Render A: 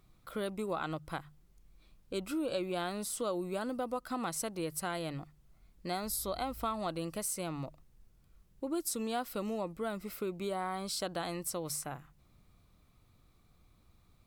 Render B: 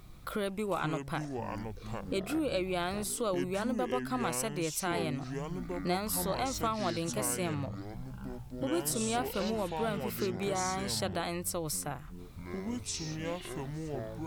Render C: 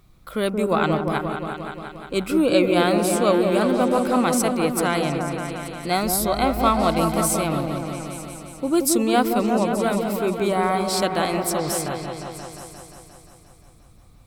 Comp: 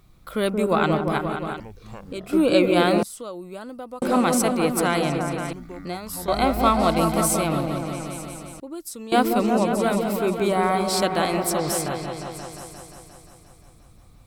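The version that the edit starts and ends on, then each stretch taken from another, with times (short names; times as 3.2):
C
1.6–2.33 from B
3.03–4.02 from A
5.53–6.28 from B
8.6–9.12 from A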